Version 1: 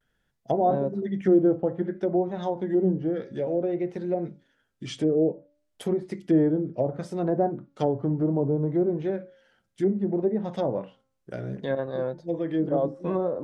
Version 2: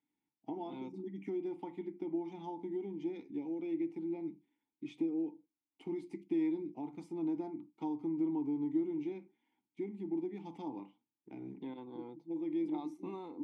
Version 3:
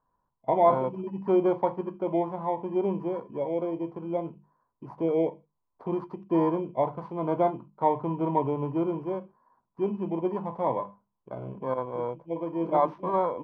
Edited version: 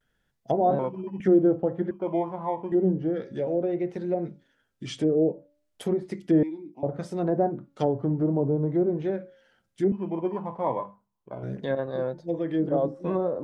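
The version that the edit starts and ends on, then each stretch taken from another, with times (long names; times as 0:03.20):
1
0:00.79–0:01.20: punch in from 3
0:01.91–0:02.72: punch in from 3
0:06.43–0:06.83: punch in from 2
0:09.92–0:11.43: punch in from 3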